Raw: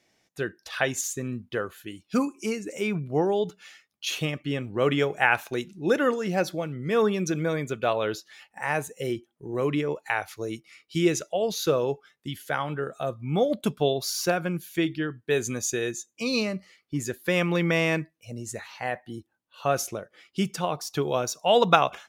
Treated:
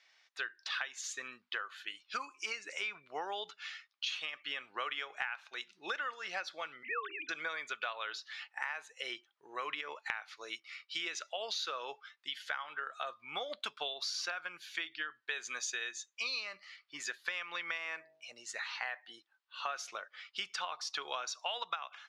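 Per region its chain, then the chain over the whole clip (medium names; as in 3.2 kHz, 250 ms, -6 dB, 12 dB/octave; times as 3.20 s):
6.83–7.29 s: formants replaced by sine waves + hum notches 50/100/150/200/250/300/350/400 Hz
17.77–18.33 s: dynamic bell 3.7 kHz, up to -8 dB, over -43 dBFS, Q 1 + de-hum 49.33 Hz, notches 19
whole clip: Chebyshev band-pass 1.2–4.4 kHz, order 2; compression 16:1, threshold -39 dBFS; trim +4.5 dB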